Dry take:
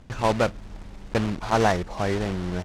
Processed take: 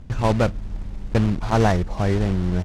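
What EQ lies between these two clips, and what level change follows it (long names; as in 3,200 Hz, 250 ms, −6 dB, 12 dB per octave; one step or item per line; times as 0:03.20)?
low-shelf EQ 230 Hz +12 dB
−1.0 dB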